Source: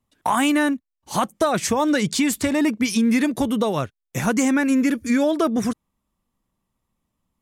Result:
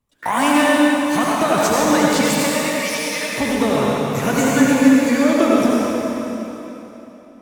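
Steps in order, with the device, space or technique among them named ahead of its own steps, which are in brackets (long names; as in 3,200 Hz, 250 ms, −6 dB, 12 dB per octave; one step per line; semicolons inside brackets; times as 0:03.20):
0:02.21–0:03.33: Butterworth high-pass 440 Hz 36 dB per octave
shimmer-style reverb (pitch-shifted copies added +12 semitones −11 dB; convolution reverb RT60 3.5 s, pre-delay 68 ms, DRR −5.5 dB)
level −1 dB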